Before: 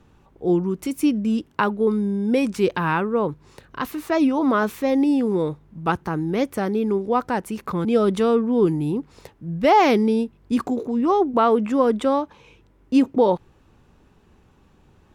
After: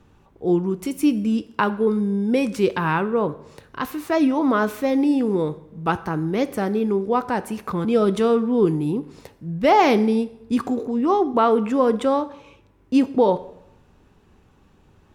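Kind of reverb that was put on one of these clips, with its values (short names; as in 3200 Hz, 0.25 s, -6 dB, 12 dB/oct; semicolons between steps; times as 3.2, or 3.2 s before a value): plate-style reverb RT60 0.78 s, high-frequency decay 0.85×, pre-delay 0 ms, DRR 12.5 dB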